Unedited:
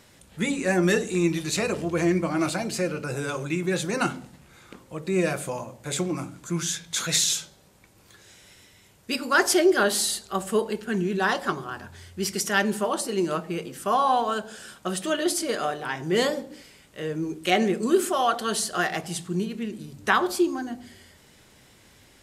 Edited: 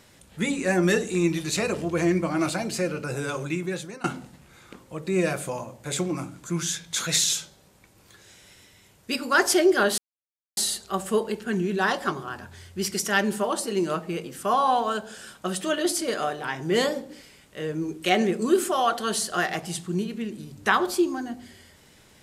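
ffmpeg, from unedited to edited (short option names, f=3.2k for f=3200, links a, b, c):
-filter_complex "[0:a]asplit=3[a][b][c];[a]atrim=end=4.04,asetpts=PTS-STARTPTS,afade=t=out:st=3.47:d=0.57:silence=0.0668344[d];[b]atrim=start=4.04:end=9.98,asetpts=PTS-STARTPTS,afade=t=in:d=0.004:c=hsin:silence=0.0668344,afade=t=out:st=5.936:d=0.004:c=hsin,apad=pad_dur=0.59[e];[c]atrim=start=9.98,asetpts=PTS-STARTPTS,afade=t=in:d=0.004:c=hsin[f];[d][e][f]concat=n=3:v=0:a=1"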